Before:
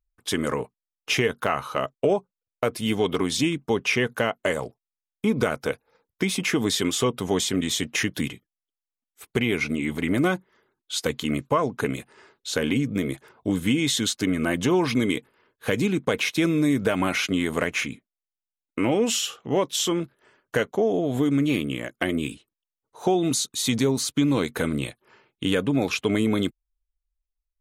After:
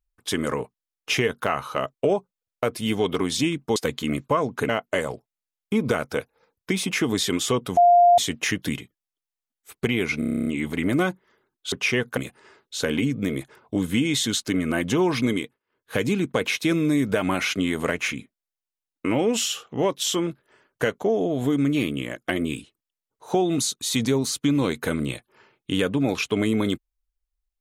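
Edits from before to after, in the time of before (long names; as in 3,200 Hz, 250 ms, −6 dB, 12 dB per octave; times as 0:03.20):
0:03.76–0:04.21: swap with 0:10.97–0:11.90
0:07.29–0:07.70: beep over 701 Hz −11 dBFS
0:09.71: stutter 0.03 s, 10 plays
0:15.04–0:15.68: duck −22 dB, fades 0.28 s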